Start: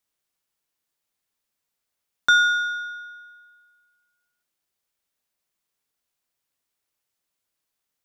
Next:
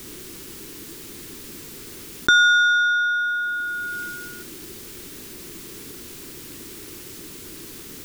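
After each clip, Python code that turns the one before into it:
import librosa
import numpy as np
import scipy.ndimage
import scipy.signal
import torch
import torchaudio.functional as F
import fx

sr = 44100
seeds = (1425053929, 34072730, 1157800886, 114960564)

y = fx.low_shelf_res(x, sr, hz=490.0, db=10.0, q=3.0)
y = fx.env_flatten(y, sr, amount_pct=70)
y = y * librosa.db_to_amplitude(1.5)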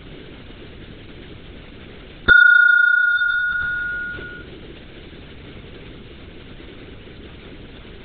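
y = fx.lpc_vocoder(x, sr, seeds[0], excitation='whisper', order=10)
y = y * librosa.db_to_amplitude(4.5)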